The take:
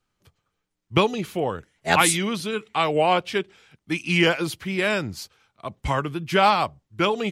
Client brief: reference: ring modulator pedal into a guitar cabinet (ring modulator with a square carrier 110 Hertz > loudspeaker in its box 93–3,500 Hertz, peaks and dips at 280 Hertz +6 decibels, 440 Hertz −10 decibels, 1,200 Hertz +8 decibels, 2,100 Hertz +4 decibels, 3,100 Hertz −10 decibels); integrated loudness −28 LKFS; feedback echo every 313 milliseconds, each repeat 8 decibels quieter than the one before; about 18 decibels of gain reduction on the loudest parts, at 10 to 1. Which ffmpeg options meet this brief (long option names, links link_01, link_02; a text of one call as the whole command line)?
ffmpeg -i in.wav -af "acompressor=threshold=-32dB:ratio=10,aecho=1:1:313|626|939|1252|1565:0.398|0.159|0.0637|0.0255|0.0102,aeval=exprs='val(0)*sgn(sin(2*PI*110*n/s))':channel_layout=same,highpass=93,equalizer=frequency=280:width_type=q:width=4:gain=6,equalizer=frequency=440:width_type=q:width=4:gain=-10,equalizer=frequency=1200:width_type=q:width=4:gain=8,equalizer=frequency=2100:width_type=q:width=4:gain=4,equalizer=frequency=3100:width_type=q:width=4:gain=-10,lowpass=frequency=3500:width=0.5412,lowpass=frequency=3500:width=1.3066,volume=7.5dB" out.wav